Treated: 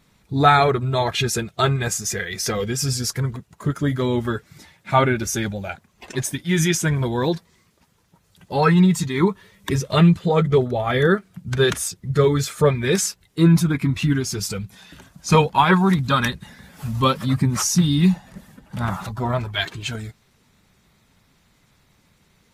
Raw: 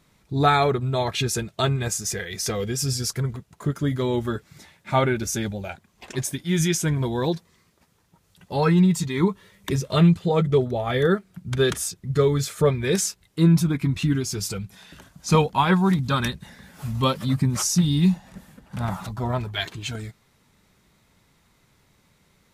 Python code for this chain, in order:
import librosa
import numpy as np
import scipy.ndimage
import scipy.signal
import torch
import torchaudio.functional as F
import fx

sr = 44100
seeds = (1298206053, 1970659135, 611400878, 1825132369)

y = fx.spec_quant(x, sr, step_db=15)
y = fx.dynamic_eq(y, sr, hz=1500.0, q=0.82, threshold_db=-40.0, ratio=4.0, max_db=4)
y = F.gain(torch.from_numpy(y), 2.5).numpy()